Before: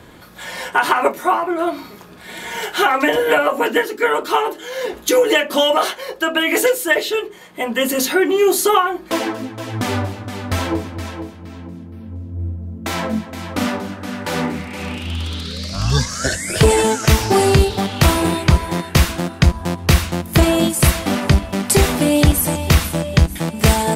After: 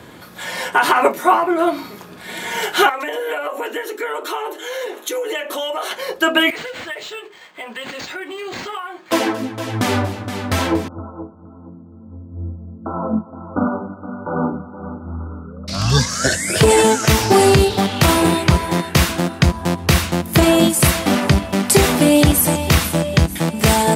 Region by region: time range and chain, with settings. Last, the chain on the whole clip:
0:02.89–0:05.91: notch filter 4,800 Hz, Q 5.3 + downward compressor 4 to 1, threshold −25 dBFS + high-pass filter 330 Hz 24 dB per octave
0:06.50–0:09.12: high-pass filter 1,400 Hz 6 dB per octave + downward compressor 3 to 1, threshold −31 dBFS + linearly interpolated sample-rate reduction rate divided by 4×
0:10.88–0:15.68: linear-phase brick-wall low-pass 1,500 Hz + expander for the loud parts, over −34 dBFS
whole clip: high-pass filter 92 Hz; boost into a limiter +4 dB; level −1 dB

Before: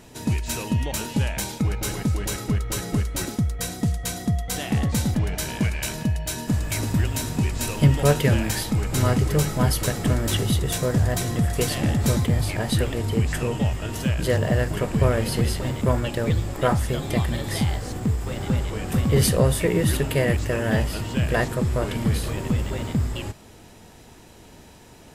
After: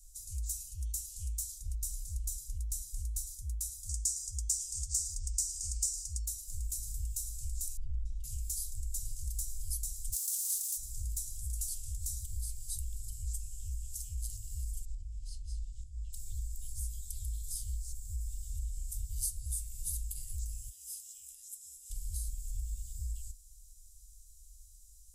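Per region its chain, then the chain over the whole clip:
0:03.89–0:06.26: flat-topped bell 6,100 Hz +14.5 dB 1.3 octaves + notch filter 4,200 Hz, Q 9
0:07.77–0:08.24: low-pass filter 1,600 Hz + comb filter 2.1 ms, depth 85%
0:10.12–0:10.76: compressing power law on the bin magnitudes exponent 0.32 + inverse Chebyshev high-pass filter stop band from 770 Hz, stop band 50 dB
0:14.85–0:16.13: high-frequency loss of the air 120 metres + downward compressor 10 to 1, threshold −25 dBFS + double-tracking delay 20 ms −11 dB
0:20.69–0:21.90: high-pass filter 560 Hz + notch filter 4,500 Hz, Q 5.8 + downward compressor 3 to 1, threshold −28 dBFS
whole clip: inverse Chebyshev band-stop filter 230–1,500 Hz, stop band 80 dB; high-shelf EQ 8,900 Hz −9 dB; downward compressor 2.5 to 1, threshold −37 dBFS; level +3 dB

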